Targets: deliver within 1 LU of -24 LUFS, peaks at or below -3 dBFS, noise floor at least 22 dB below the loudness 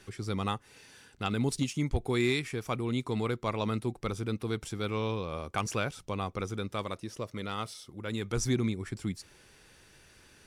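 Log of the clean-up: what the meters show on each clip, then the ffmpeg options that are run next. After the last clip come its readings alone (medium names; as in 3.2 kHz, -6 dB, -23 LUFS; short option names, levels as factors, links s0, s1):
loudness -33.5 LUFS; peak level -18.0 dBFS; loudness target -24.0 LUFS
-> -af "volume=2.99"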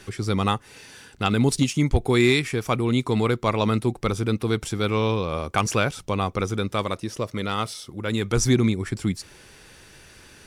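loudness -24.0 LUFS; peak level -8.5 dBFS; noise floor -50 dBFS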